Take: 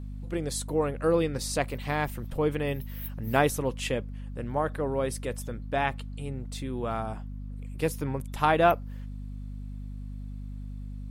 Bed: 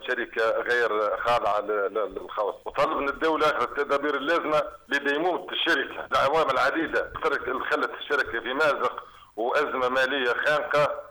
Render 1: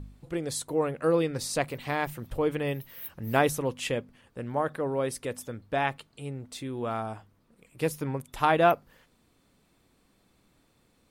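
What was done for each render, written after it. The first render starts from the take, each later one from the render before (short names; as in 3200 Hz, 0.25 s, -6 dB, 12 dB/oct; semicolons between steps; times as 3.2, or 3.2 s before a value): de-hum 50 Hz, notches 5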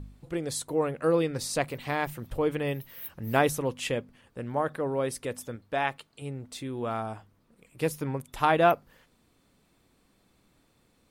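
5.56–6.22 low shelf 250 Hz -7 dB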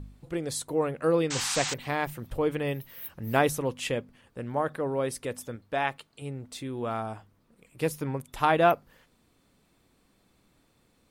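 1.3–1.74 painted sound noise 720–8300 Hz -32 dBFS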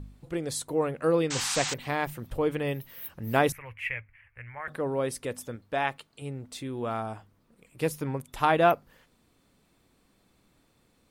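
3.52–4.68 EQ curve 110 Hz 0 dB, 160 Hz -22 dB, 270 Hz -27 dB, 440 Hz -21 dB, 1300 Hz -5 dB, 2200 Hz +13 dB, 3600 Hz -21 dB, 7700 Hz -25 dB, 12000 Hz -11 dB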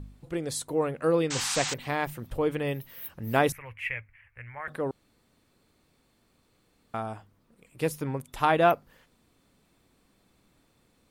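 4.91–6.94 room tone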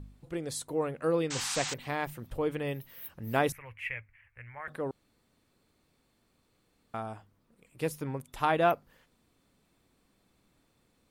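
gain -4 dB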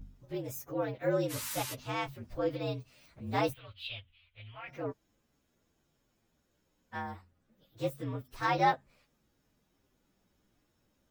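inharmonic rescaling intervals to 116%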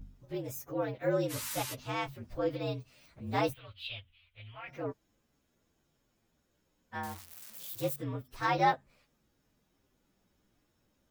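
7.03–7.96 switching spikes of -35.5 dBFS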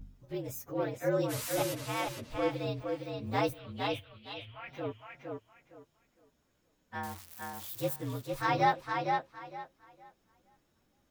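tape echo 0.461 s, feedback 24%, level -3 dB, low-pass 5400 Hz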